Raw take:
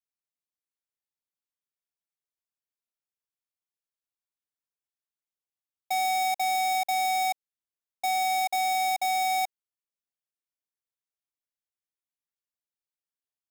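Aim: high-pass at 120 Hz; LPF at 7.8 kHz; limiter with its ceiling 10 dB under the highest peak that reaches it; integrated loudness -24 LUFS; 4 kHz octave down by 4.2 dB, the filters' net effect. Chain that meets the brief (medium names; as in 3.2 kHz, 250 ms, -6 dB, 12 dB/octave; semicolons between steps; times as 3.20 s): high-pass 120 Hz; low-pass 7.8 kHz; peaking EQ 4 kHz -4.5 dB; trim +13 dB; peak limiter -20.5 dBFS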